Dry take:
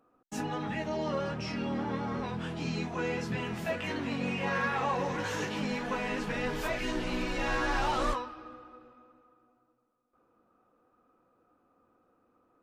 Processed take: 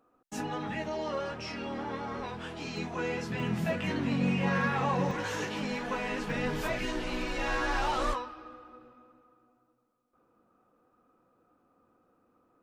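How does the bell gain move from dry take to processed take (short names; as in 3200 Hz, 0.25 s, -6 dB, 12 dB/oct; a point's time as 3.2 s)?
bell 160 Hz 1.2 oct
-2.5 dB
from 0.89 s -10.5 dB
from 2.77 s -2.5 dB
from 3.4 s +9 dB
from 5.11 s -2.5 dB
from 6.3 s +4.5 dB
from 6.85 s -5.5 dB
from 8.69 s +3 dB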